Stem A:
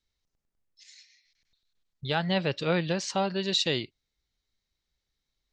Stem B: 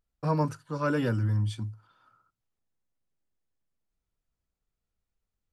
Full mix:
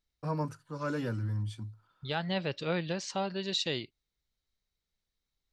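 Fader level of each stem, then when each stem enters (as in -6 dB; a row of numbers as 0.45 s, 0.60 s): -5.5 dB, -6.5 dB; 0.00 s, 0.00 s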